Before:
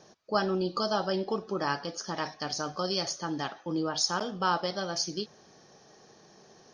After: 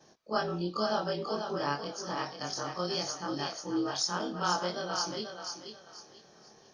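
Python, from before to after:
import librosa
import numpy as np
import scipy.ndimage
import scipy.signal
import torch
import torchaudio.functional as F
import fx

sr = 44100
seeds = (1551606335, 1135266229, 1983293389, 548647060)

y = fx.frame_reverse(x, sr, frame_ms=56.0)
y = fx.echo_thinned(y, sr, ms=487, feedback_pct=31, hz=400.0, wet_db=-5.5)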